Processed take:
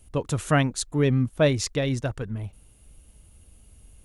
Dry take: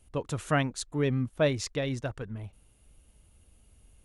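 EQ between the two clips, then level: low shelf 340 Hz +4 dB; high shelf 5700 Hz +6 dB; +3.5 dB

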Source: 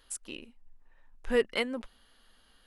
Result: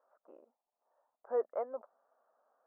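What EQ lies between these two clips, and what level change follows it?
resonant high-pass 630 Hz, resonance Q 4.6; elliptic low-pass 1300 Hz, stop band 70 dB; -7.5 dB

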